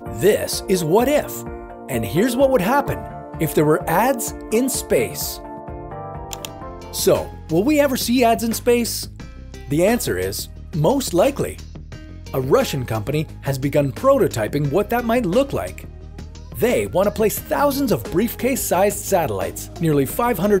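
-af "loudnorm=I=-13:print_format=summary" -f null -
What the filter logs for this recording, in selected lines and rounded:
Input Integrated:    -19.6 LUFS
Input True Peak:      -3.9 dBTP
Input LRA:             2.6 LU
Input Threshold:     -30.2 LUFS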